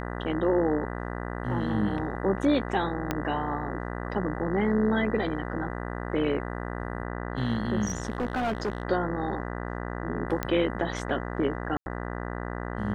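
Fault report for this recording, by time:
buzz 60 Hz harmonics 33 -34 dBFS
3.11 s: pop -12 dBFS
7.85–8.83 s: clipped -24 dBFS
10.43 s: pop -13 dBFS
11.77–11.86 s: dropout 91 ms

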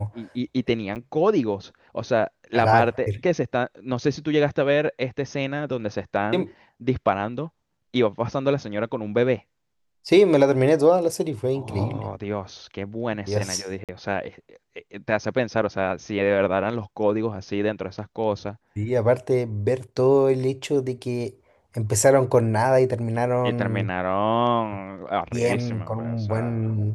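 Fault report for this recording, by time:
0.95–0.96 s: dropout 8.9 ms
13.84–13.89 s: dropout 47 ms

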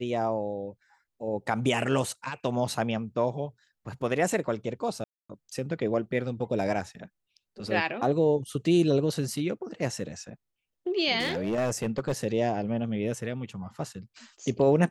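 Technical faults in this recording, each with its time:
5.04–5.29 s: dropout 255 ms
11.19–12.12 s: clipped -23 dBFS

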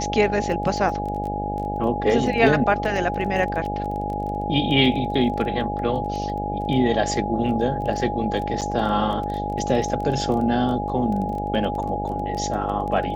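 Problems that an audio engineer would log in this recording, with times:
buzz 50 Hz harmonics 16 -29 dBFS
crackle 16 per s -29 dBFS
whine 830 Hz -27 dBFS
2.85 s: dropout 2.3 ms
8.61–8.62 s: dropout 7.6 ms

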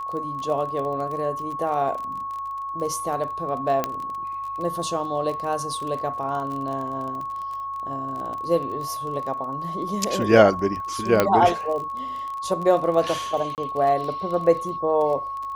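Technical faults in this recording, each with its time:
crackle 23 per s -30 dBFS
whine 1.1 kHz -28 dBFS
3.84 s: pop -9 dBFS
11.20 s: pop -4 dBFS
13.55–13.58 s: dropout 28 ms

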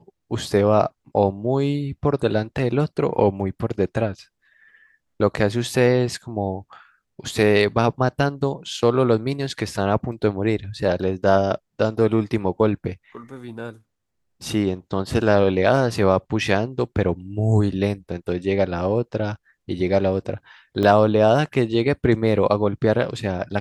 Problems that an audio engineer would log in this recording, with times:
20.83 s: dropout 2.2 ms

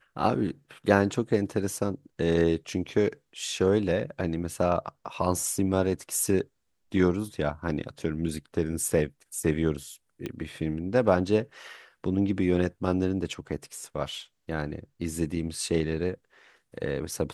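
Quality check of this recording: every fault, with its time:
10.26 s: pop -20 dBFS

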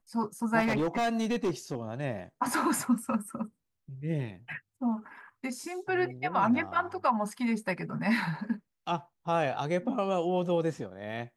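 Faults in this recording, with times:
0.59–1.75 s: clipped -24.5 dBFS

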